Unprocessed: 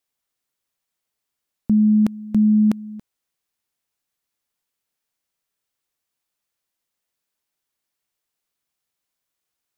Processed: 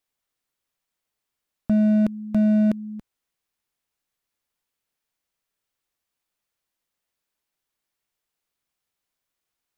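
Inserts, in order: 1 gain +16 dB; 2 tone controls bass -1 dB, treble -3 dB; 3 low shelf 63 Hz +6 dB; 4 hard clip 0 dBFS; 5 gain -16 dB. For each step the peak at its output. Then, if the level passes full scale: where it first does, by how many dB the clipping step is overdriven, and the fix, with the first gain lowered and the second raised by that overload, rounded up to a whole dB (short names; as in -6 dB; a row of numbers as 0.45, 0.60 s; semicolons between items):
+4.5, +4.0, +5.5, 0.0, -16.0 dBFS; step 1, 5.5 dB; step 1 +10 dB, step 5 -10 dB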